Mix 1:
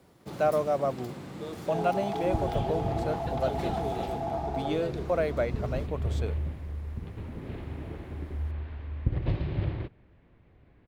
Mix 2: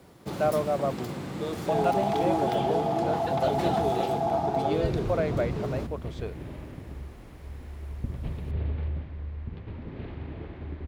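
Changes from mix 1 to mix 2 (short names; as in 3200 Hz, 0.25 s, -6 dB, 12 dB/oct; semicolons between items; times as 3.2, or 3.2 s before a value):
speech: add air absorption 96 m; first sound +6.0 dB; second sound: entry +2.50 s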